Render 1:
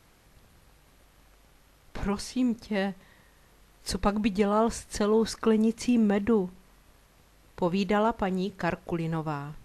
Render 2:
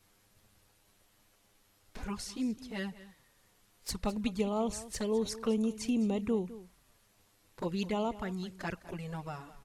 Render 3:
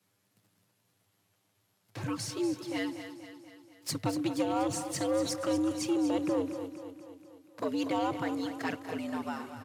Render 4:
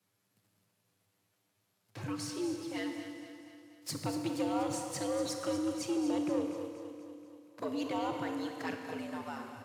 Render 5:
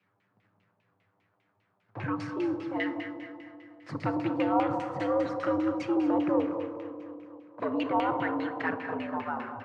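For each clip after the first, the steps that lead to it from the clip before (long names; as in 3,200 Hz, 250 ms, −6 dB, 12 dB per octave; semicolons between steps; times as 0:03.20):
high-shelf EQ 3,700 Hz +8 dB; flanger swept by the level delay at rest 10.6 ms, full sweep at −21 dBFS; single-tap delay 207 ms −16.5 dB; level −6.5 dB
leveller curve on the samples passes 2; repeating echo 240 ms, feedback 56%, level −10.5 dB; frequency shifter +92 Hz; level −3.5 dB
four-comb reverb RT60 2.1 s, combs from 27 ms, DRR 5.5 dB; level −4.5 dB
auto-filter low-pass saw down 5 Hz 800–2,600 Hz; level +5 dB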